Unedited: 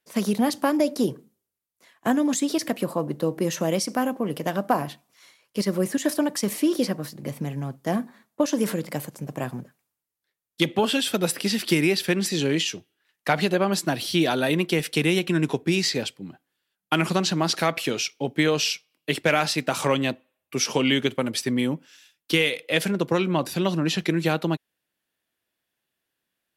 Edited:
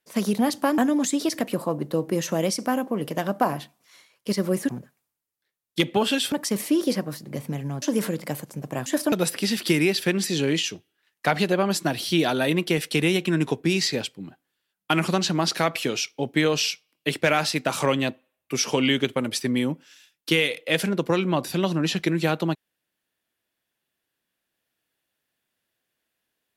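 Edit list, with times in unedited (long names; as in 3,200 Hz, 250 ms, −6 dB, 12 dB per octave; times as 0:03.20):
0:00.78–0:02.07: remove
0:05.98–0:06.24: swap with 0:09.51–0:11.14
0:07.74–0:08.47: remove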